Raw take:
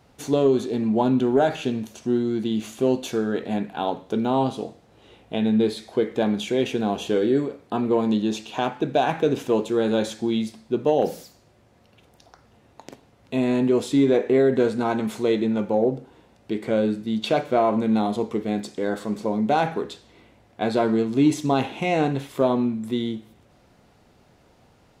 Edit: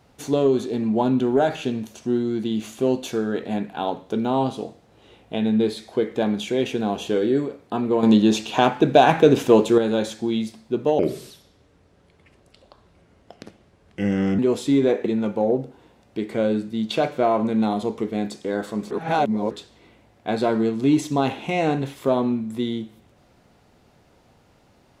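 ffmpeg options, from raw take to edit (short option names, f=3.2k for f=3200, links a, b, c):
-filter_complex "[0:a]asplit=8[a][b][c][d][e][f][g][h];[a]atrim=end=8.032[i];[b]atrim=start=8.028:end=9.782,asetpts=PTS-STARTPTS,volume=7dB[j];[c]atrim=start=9.778:end=10.994[k];[d]atrim=start=10.99:end=13.64,asetpts=PTS-STARTPTS,asetrate=34398,aresample=44100[l];[e]atrim=start=13.636:end=14.312[m];[f]atrim=start=15.388:end=19.242[n];[g]atrim=start=19.238:end=19.842,asetpts=PTS-STARTPTS,areverse[o];[h]atrim=start=19.838[p];[i][j]acrossfade=d=0.004:c1=hsin:c2=hsin[q];[q][k]acrossfade=d=0.004:c1=hsin:c2=hsin[r];[r][l]acrossfade=d=0.004:c1=hsin:c2=hsin[s];[s][m]acrossfade=d=0.004:c1=hsin:c2=hsin[t];[t][n]acrossfade=d=0.004:c1=hsin:c2=hsin[u];[u][o]acrossfade=d=0.004:c1=hsin:c2=hsin[v];[v][p]acrossfade=d=0.004:c1=hsin:c2=hsin"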